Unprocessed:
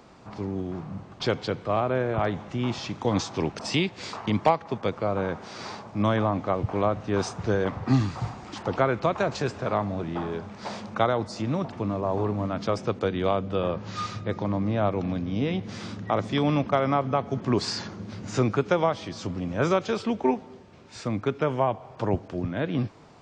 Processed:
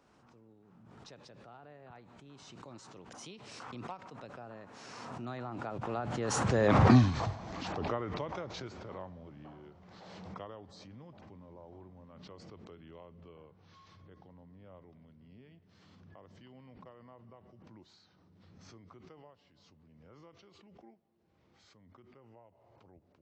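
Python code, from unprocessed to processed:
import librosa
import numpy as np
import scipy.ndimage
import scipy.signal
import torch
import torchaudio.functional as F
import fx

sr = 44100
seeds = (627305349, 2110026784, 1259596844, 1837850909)

y = fx.doppler_pass(x, sr, speed_mps=44, closest_m=9.2, pass_at_s=6.86)
y = fx.pre_swell(y, sr, db_per_s=24.0)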